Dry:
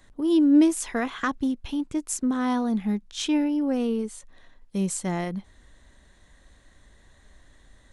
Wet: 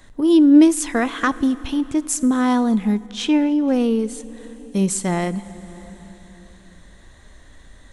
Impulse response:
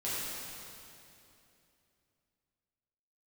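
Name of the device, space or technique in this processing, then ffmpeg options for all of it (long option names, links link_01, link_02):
compressed reverb return: -filter_complex "[0:a]asplit=2[link_01][link_02];[1:a]atrim=start_sample=2205[link_03];[link_02][link_03]afir=irnorm=-1:irlink=0,acompressor=threshold=-27dB:ratio=5,volume=-13dB[link_04];[link_01][link_04]amix=inputs=2:normalize=0,asettb=1/sr,asplit=3[link_05][link_06][link_07];[link_05]atrim=end=3.064[link_08];[link_06]atrim=start=3.06:end=3.68,asetpts=PTS-STARTPTS,afade=type=in:duration=0.004:curve=qsin,afade=type=out:start_time=0.616:duration=0.004:curve=qsin,bass=frequency=250:gain=-2,treble=frequency=4000:gain=-8[link_09];[link_07]atrim=start=3.676[link_10];[link_08][link_09]acrossfade=duration=0.004:curve1=hsin:curve2=qsin[link_11];[link_11][link_10]acrossfade=duration=0.004:curve1=qsin:curve2=hsin,volume=6.5dB"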